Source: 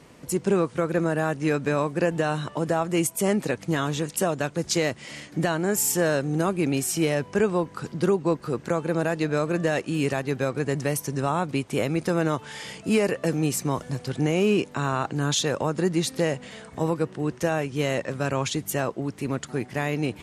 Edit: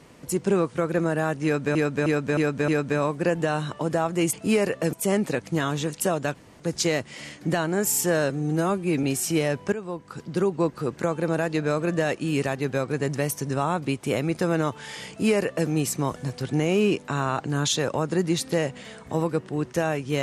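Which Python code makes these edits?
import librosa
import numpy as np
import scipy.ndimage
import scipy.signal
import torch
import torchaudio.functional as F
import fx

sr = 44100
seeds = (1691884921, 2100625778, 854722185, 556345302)

y = fx.edit(x, sr, fx.repeat(start_s=1.44, length_s=0.31, count=5),
    fx.insert_room_tone(at_s=4.51, length_s=0.25),
    fx.stretch_span(start_s=6.21, length_s=0.49, factor=1.5),
    fx.fade_in_from(start_s=7.39, length_s=0.89, floor_db=-13.5),
    fx.duplicate(start_s=12.75, length_s=0.6, to_s=3.09), tone=tone)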